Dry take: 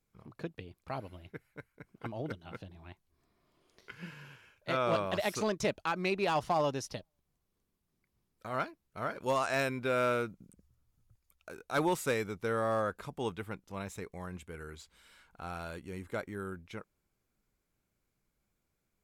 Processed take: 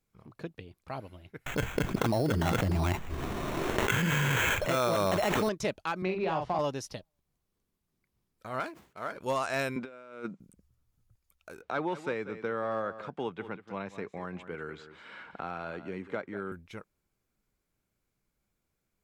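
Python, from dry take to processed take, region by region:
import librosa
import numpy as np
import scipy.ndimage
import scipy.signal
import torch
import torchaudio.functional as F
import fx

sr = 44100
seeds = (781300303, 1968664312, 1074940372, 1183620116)

y = fx.chain(x, sr, fx.sample_hold(seeds[0], rate_hz=4800.0, jitter_pct=0),
    fx.peak_eq(hz=12000.0, db=-6.0, octaves=2.7),
    fx.env_flatten(amount_pct=100), at=(1.46, 5.49))
y = fx.chain(y, sr, fx.spacing_loss(db_at_10k=24),
    fx.doubler(ms=43.0, db=-4.5),
    fx.band_squash(depth_pct=70), at=(6.02, 6.59))
y = fx.chain(y, sr, fx.median_filter(points=9),
    fx.highpass(hz=360.0, slope=6),
    fx.sustainer(db_per_s=130.0), at=(8.6, 9.12))
y = fx.chain(y, sr, fx.cheby1_bandpass(low_hz=180.0, high_hz=8100.0, order=3),
    fx.high_shelf(hz=3600.0, db=-8.5),
    fx.over_compress(threshold_db=-39.0, ratio=-0.5), at=(9.76, 10.4))
y = fx.chain(y, sr, fx.bandpass_edges(low_hz=160.0, high_hz=3200.0),
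    fx.echo_single(ms=188, db=-15.0),
    fx.band_squash(depth_pct=70), at=(11.62, 16.52))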